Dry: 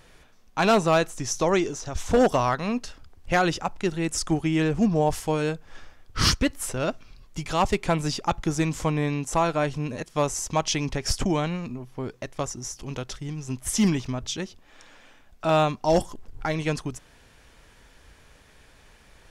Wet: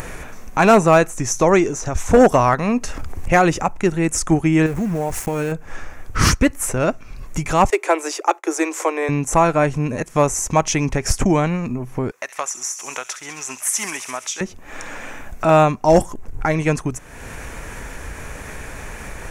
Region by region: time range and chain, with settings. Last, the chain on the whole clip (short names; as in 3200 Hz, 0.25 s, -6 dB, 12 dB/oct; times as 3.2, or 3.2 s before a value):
2.53–3.71 bell 1500 Hz -4 dB 0.21 oct + upward compressor, threshold -24 dBFS
4.66–5.52 compressor, threshold -27 dBFS + notch 1100 Hz, Q 19 + sample gate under -39 dBFS
7.7–9.09 steep high-pass 320 Hz 96 dB/oct + expander -40 dBFS
12.11–14.41 HPF 950 Hz + thin delay 67 ms, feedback 73%, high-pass 2900 Hz, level -12.5 dB
whole clip: upward compressor, threshold -26 dBFS; band shelf 3900 Hz -10 dB 1 oct; gain +8 dB